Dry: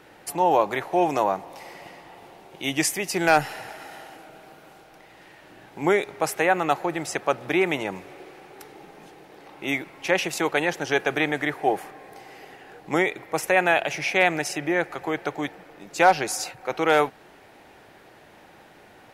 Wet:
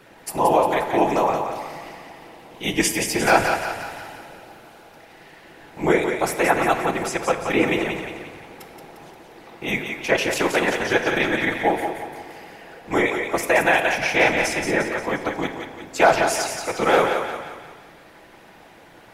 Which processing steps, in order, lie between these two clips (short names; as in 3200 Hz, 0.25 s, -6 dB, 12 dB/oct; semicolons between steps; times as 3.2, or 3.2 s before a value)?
whisperiser; thinning echo 0.176 s, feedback 50%, high-pass 550 Hz, level -5.5 dB; shoebox room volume 1400 m³, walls mixed, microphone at 0.7 m; gain +1.5 dB